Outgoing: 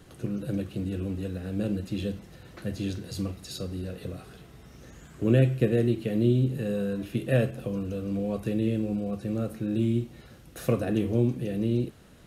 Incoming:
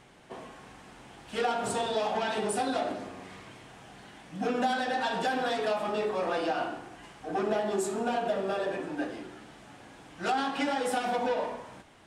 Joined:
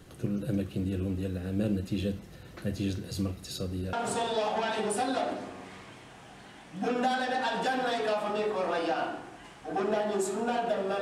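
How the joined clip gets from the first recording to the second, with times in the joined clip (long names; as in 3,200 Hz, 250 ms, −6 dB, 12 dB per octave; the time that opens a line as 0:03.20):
outgoing
0:03.93: continue with incoming from 0:01.52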